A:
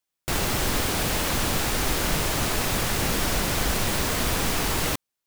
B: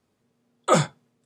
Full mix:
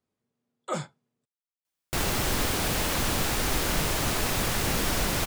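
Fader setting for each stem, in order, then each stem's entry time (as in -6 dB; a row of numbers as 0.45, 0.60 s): -2.0, -12.5 dB; 1.65, 0.00 s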